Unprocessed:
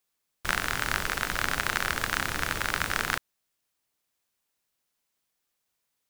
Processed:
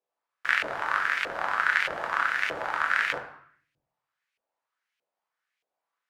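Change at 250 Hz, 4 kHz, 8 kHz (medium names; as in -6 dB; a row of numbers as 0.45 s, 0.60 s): -8.5 dB, -4.5 dB, -14.5 dB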